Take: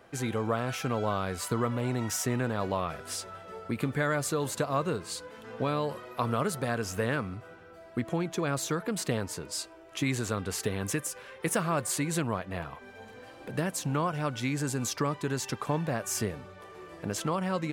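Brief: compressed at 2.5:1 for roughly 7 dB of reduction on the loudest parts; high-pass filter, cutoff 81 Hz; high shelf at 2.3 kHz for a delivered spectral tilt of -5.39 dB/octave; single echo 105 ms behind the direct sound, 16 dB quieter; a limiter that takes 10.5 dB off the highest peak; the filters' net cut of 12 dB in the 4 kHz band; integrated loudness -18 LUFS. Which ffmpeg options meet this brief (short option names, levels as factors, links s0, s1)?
-af "highpass=81,highshelf=f=2300:g=-8,equalizer=f=4000:t=o:g=-8,acompressor=threshold=0.0158:ratio=2.5,alimiter=level_in=2.37:limit=0.0631:level=0:latency=1,volume=0.422,aecho=1:1:105:0.158,volume=17.8"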